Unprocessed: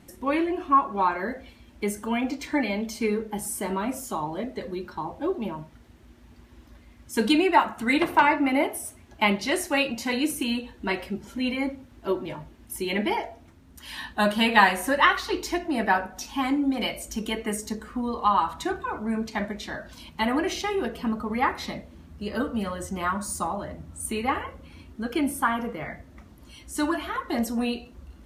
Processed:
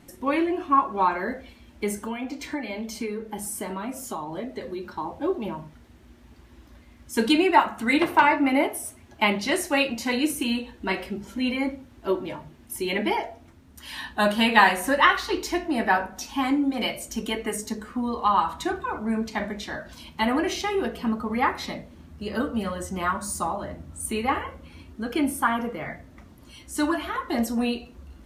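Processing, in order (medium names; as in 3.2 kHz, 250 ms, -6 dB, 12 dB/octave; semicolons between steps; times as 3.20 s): hum notches 50/100/150/200 Hz; 2.03–4.83 s: compression 4:1, threshold -30 dBFS, peak gain reduction 9.5 dB; flange 0.23 Hz, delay 6.8 ms, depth 8.2 ms, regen -72%; trim +5.5 dB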